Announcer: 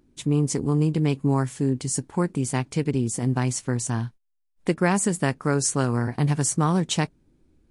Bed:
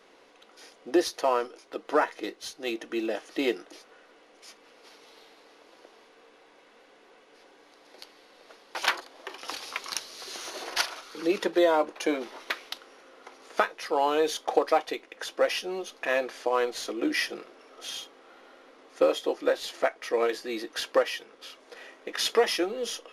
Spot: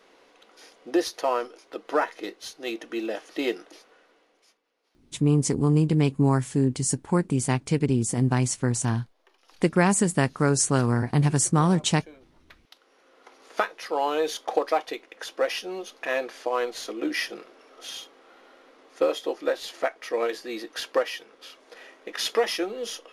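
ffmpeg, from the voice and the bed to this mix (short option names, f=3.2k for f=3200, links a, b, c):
-filter_complex "[0:a]adelay=4950,volume=1dB[a];[1:a]volume=21dB,afade=t=out:st=3.64:d=0.98:silence=0.0841395,afade=t=in:st=12.63:d=0.96:silence=0.0891251[b];[a][b]amix=inputs=2:normalize=0"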